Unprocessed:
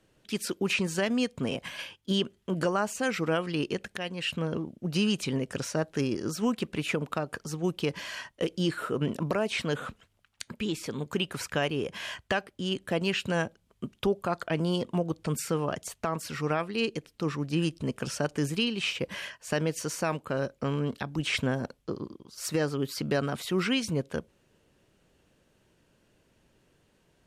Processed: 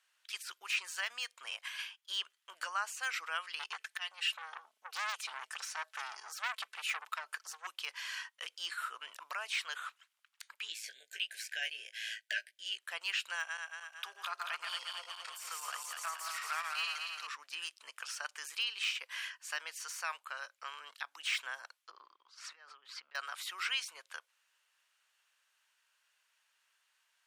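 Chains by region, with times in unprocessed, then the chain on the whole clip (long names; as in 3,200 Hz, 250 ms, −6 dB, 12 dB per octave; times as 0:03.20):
0:03.59–0:07.67: comb filter 4.6 ms, depth 80% + saturating transformer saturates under 2,000 Hz
0:10.68–0:12.78: linear-phase brick-wall band-stop 720–1,500 Hz + double-tracking delay 18 ms −5 dB + amplitude modulation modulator 110 Hz, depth 25%
0:13.35–0:17.27: feedback delay that plays each chunk backwards 113 ms, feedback 74%, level −3.5 dB + low-shelf EQ 460 Hz −11 dB
0:21.91–0:23.15: head-to-tape spacing loss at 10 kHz 26 dB + compressor whose output falls as the input rises −37 dBFS
whole clip: de-essing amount 80%; high-pass filter 1,100 Hz 24 dB per octave; level −2.5 dB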